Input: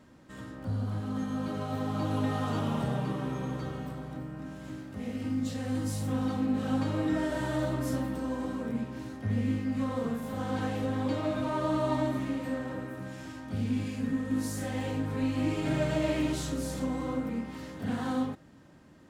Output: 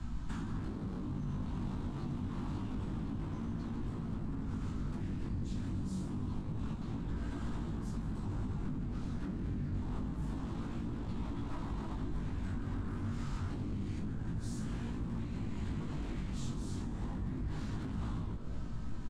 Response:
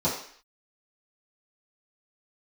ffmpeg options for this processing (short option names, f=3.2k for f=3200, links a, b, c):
-filter_complex "[0:a]acompressor=threshold=-42dB:ratio=12,asplit=2[a][b];[b]adelay=21,volume=-13dB[c];[a][c]amix=inputs=2:normalize=0,afreqshift=-290,aemphasis=mode=reproduction:type=bsi,aeval=exprs='0.0141*(abs(mod(val(0)/0.0141+3,4)-2)-1)':c=same,equalizer=f=250:t=o:w=1:g=9,equalizer=f=500:t=o:w=1:g=-11,equalizer=f=1k:t=o:w=1:g=7,equalizer=f=4k:t=o:w=1:g=5,equalizer=f=8k:t=o:w=1:g=11,asplit=2[d][e];[e]asplit=5[f][g][h][i][j];[f]adelay=159,afreqshift=110,volume=-17dB[k];[g]adelay=318,afreqshift=220,volume=-22.2dB[l];[h]adelay=477,afreqshift=330,volume=-27.4dB[m];[i]adelay=636,afreqshift=440,volume=-32.6dB[n];[j]adelay=795,afreqshift=550,volume=-37.8dB[o];[k][l][m][n][o]amix=inputs=5:normalize=0[p];[d][p]amix=inputs=2:normalize=0,flanger=delay=17.5:depth=3.9:speed=0.27,acrossover=split=140[q][r];[r]acompressor=threshold=-52dB:ratio=2.5[s];[q][s]amix=inputs=2:normalize=0,volume=8dB"